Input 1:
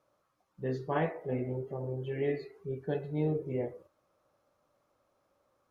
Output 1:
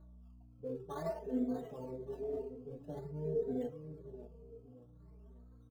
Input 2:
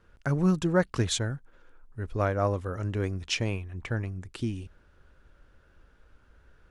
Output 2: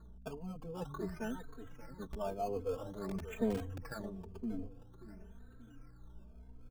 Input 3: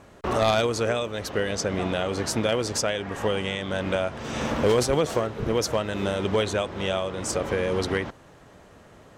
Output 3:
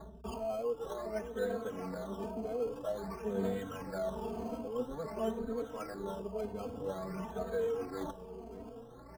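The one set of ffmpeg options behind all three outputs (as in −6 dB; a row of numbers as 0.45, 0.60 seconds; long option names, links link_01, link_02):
-filter_complex "[0:a]lowpass=frequency=1600:width=0.5412,lowpass=frequency=1600:width=1.3066,lowshelf=frequency=180:gain=-3,aecho=1:1:4.5:0.97,areverse,acompressor=threshold=-30dB:ratio=16,areverse,aphaser=in_gain=1:out_gain=1:delay=4.8:decay=0.51:speed=0.29:type=triangular,aecho=1:1:584|1168|1752|2336:0.282|0.093|0.0307|0.0101,acrossover=split=140|1200[link_01][link_02][link_03];[link_01]aeval=exprs='(mod(44.7*val(0)+1,2)-1)/44.7':channel_layout=same[link_04];[link_03]acrusher=samples=16:mix=1:aa=0.000001:lfo=1:lforange=16:lforate=0.5[link_05];[link_04][link_02][link_05]amix=inputs=3:normalize=0,aeval=exprs='val(0)+0.00282*(sin(2*PI*60*n/s)+sin(2*PI*2*60*n/s)/2+sin(2*PI*3*60*n/s)/3+sin(2*PI*4*60*n/s)/4+sin(2*PI*5*60*n/s)/5)':channel_layout=same,asplit=2[link_06][link_07];[link_07]adelay=3,afreqshift=0.98[link_08];[link_06][link_08]amix=inputs=2:normalize=1,volume=-2.5dB"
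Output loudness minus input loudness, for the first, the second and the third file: −6.0, −12.0, −13.0 LU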